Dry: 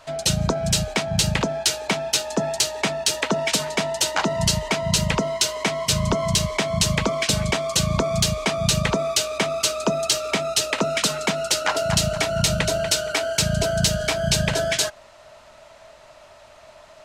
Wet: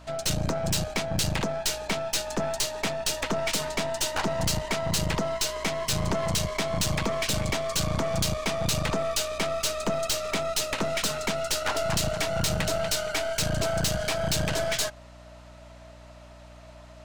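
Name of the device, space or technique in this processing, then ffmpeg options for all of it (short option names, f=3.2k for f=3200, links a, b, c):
valve amplifier with mains hum: -af "aeval=exprs='(tanh(12.6*val(0)+0.7)-tanh(0.7))/12.6':c=same,aeval=exprs='val(0)+0.00398*(sin(2*PI*60*n/s)+sin(2*PI*2*60*n/s)/2+sin(2*PI*3*60*n/s)/3+sin(2*PI*4*60*n/s)/4+sin(2*PI*5*60*n/s)/5)':c=same"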